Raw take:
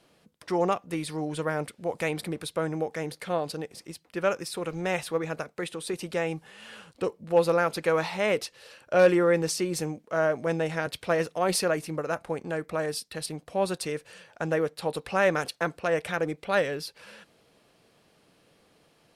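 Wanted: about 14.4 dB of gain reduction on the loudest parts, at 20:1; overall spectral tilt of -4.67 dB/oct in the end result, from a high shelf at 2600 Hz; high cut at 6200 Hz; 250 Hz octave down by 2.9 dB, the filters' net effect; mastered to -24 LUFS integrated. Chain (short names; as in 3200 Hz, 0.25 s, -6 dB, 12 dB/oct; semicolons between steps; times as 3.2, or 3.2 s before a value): LPF 6200 Hz; bell 250 Hz -5 dB; high shelf 2600 Hz -8.5 dB; compressor 20:1, threshold -30 dBFS; gain +13 dB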